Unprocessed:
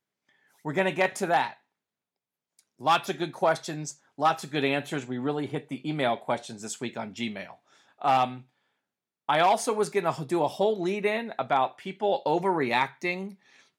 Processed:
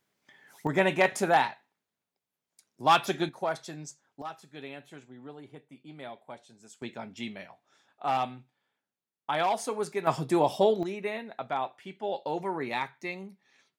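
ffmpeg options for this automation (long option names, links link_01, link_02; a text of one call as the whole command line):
ffmpeg -i in.wav -af "asetnsamples=nb_out_samples=441:pad=0,asendcmd='0.67 volume volume 1dB;3.29 volume volume -7dB;4.22 volume volume -16.5dB;6.82 volume volume -5.5dB;10.07 volume volume 1.5dB;10.83 volume volume -7dB',volume=8.5dB" out.wav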